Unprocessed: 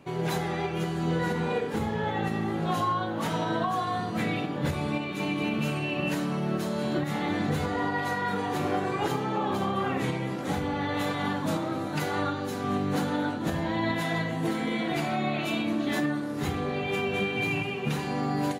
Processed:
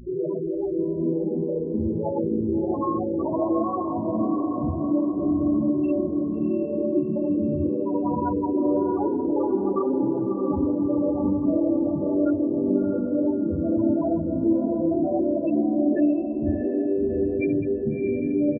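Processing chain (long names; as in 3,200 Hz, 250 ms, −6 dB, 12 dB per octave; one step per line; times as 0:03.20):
spectral envelope exaggerated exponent 3
comb filter 3.3 ms, depth 50%
hum with harmonics 60 Hz, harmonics 36, −43 dBFS −3 dB per octave
spectral peaks only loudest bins 8
feedback delay with all-pass diffusion 673 ms, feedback 47%, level −4 dB
level +4 dB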